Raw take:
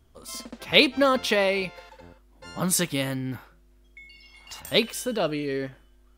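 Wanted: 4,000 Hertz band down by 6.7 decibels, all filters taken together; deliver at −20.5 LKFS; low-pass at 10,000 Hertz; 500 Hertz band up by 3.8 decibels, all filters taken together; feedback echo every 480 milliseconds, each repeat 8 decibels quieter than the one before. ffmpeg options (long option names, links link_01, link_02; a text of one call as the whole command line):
ffmpeg -i in.wav -af "lowpass=10000,equalizer=frequency=500:width_type=o:gain=4.5,equalizer=frequency=4000:width_type=o:gain=-8.5,aecho=1:1:480|960|1440|1920|2400:0.398|0.159|0.0637|0.0255|0.0102,volume=3.5dB" out.wav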